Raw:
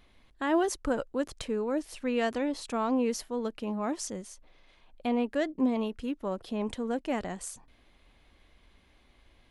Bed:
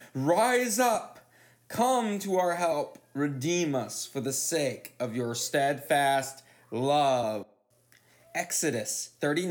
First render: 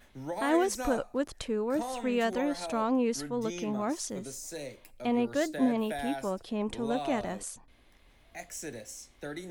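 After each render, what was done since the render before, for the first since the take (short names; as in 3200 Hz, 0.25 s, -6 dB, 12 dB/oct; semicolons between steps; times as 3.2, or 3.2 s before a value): add bed -12 dB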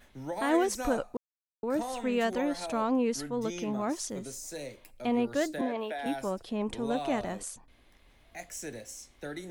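1.17–1.63 mute; 5.61–6.06 three-band isolator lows -21 dB, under 300 Hz, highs -14 dB, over 4700 Hz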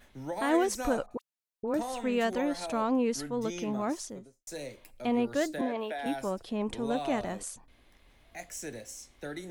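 1.06–1.74 dispersion highs, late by 49 ms, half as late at 1400 Hz; 3.87–4.47 studio fade out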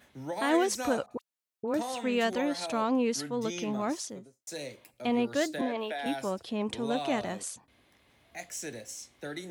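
HPF 73 Hz 24 dB/oct; dynamic EQ 3800 Hz, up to +5 dB, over -51 dBFS, Q 0.73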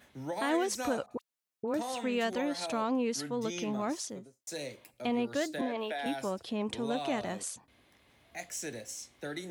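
compressor 1.5:1, threshold -33 dBFS, peak gain reduction 4.5 dB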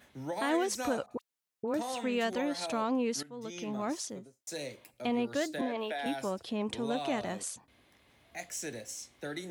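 3.23–3.94 fade in, from -15.5 dB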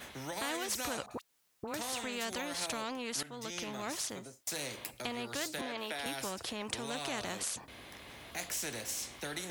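in parallel at -0.5 dB: compressor, threshold -42 dBFS, peak gain reduction 15.5 dB; on the sum: spectral compressor 2:1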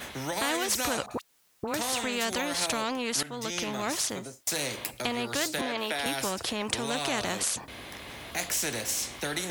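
gain +8 dB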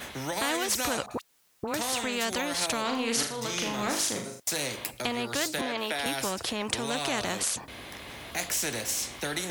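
2.81–4.4 flutter echo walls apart 6.7 m, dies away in 0.48 s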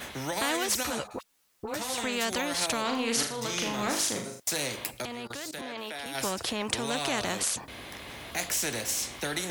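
0.83–1.98 ensemble effect; 5.05–6.15 level quantiser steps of 19 dB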